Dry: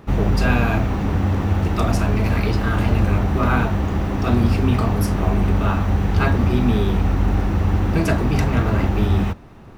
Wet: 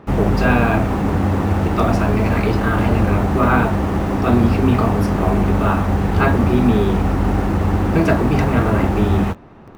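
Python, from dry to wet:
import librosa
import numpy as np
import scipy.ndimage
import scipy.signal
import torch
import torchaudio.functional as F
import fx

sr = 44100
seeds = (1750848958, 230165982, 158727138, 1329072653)

p1 = fx.lowpass(x, sr, hz=1600.0, slope=6)
p2 = fx.low_shelf(p1, sr, hz=130.0, db=-10.0)
p3 = fx.quant_dither(p2, sr, seeds[0], bits=6, dither='none')
p4 = p2 + (p3 * librosa.db_to_amplitude(-10.0))
y = p4 * librosa.db_to_amplitude(4.5)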